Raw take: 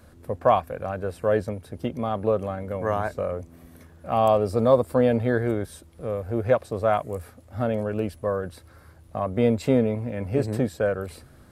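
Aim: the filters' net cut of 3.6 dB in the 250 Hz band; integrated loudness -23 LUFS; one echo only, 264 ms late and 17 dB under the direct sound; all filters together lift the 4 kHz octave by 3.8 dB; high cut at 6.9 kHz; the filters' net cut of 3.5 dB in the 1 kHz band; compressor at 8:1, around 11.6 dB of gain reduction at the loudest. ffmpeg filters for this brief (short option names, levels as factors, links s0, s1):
-af "lowpass=6900,equalizer=f=250:t=o:g=-4,equalizer=f=1000:t=o:g=-5,equalizer=f=4000:t=o:g=5.5,acompressor=threshold=0.0447:ratio=8,aecho=1:1:264:0.141,volume=3.55"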